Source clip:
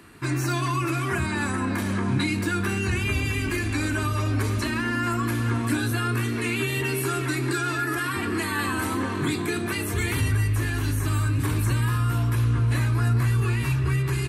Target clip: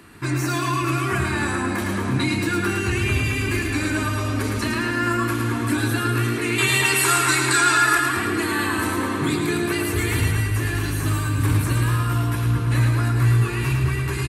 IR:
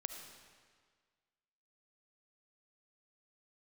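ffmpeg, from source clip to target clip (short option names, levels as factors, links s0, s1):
-filter_complex "[0:a]asettb=1/sr,asplit=3[s0][s1][s2];[s0]atrim=end=6.584[s3];[s1]atrim=start=6.58:end=7.98,asetpts=PTS-STARTPTS,afade=t=in:d=0.004:c=qsin,afade=t=out:st=1.396:d=0.004:c=qsin,equalizer=f=250:t=o:w=1:g=-6,equalizer=f=1000:t=o:w=1:g=9,equalizer=f=2000:t=o:w=1:g=4,equalizer=f=4000:t=o:w=1:g=6,equalizer=f=8000:t=o:w=1:g=11[s4];[s2]atrim=start=7.976[s5];[s3][s4]acrossfade=d=0.004:c1=hsin:c2=qsin[s6];[s6][s5]acrossfade=d=0.004:c1=qsin:c2=hsin,aecho=1:1:109|218|327|436|545|654|763|872:0.562|0.321|0.183|0.104|0.0594|0.0338|0.0193|0.011,volume=1.26"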